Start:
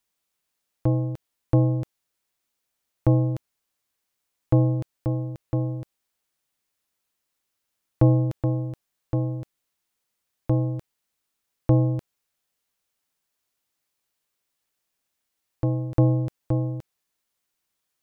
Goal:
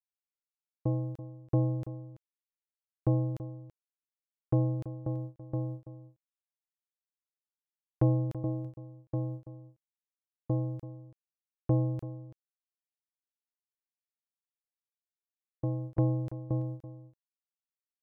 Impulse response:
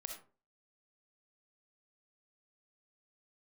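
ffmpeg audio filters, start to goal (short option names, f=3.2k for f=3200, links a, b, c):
-filter_complex "[0:a]agate=range=-26dB:threshold=-29dB:ratio=16:detection=peak,asplit=2[a][b];[b]adelay=332.4,volume=-14dB,highshelf=f=4k:g=-7.48[c];[a][c]amix=inputs=2:normalize=0,volume=-8dB"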